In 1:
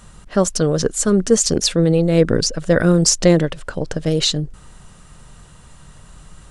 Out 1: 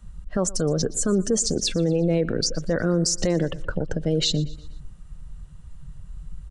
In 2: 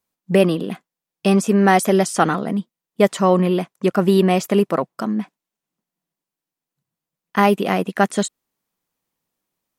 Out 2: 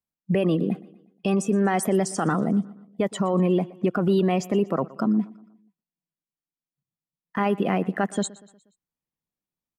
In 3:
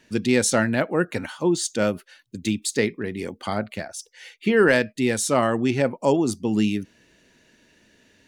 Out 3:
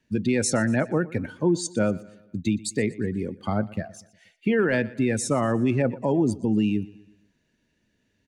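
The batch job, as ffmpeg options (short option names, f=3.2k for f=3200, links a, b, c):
-filter_complex "[0:a]afftdn=nr=14:nf=-29,bass=f=250:g=9,treble=f=4k:g=-1,acrossover=split=270|1800[a][b][c];[a]acompressor=threshold=-22dB:ratio=6[d];[d][b][c]amix=inputs=3:normalize=0,alimiter=limit=-12dB:level=0:latency=1:release=49,aecho=1:1:120|240|360|480:0.0944|0.0453|0.0218|0.0104,volume=-1.5dB"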